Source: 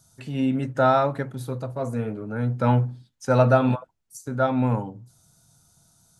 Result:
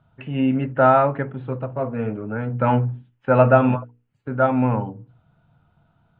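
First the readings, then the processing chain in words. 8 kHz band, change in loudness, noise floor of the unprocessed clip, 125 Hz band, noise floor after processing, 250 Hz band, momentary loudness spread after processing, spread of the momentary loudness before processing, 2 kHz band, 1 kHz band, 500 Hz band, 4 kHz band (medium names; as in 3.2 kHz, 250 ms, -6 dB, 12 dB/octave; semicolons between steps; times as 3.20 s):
under -35 dB, +3.5 dB, -69 dBFS, +1.0 dB, -66 dBFS, +3.0 dB, 14 LU, 13 LU, +4.5 dB, +4.5 dB, +4.0 dB, no reading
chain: elliptic low-pass 2.9 kHz, stop band 50 dB; hum notches 60/120/180/240/300/360/420/480 Hz; trim +4.5 dB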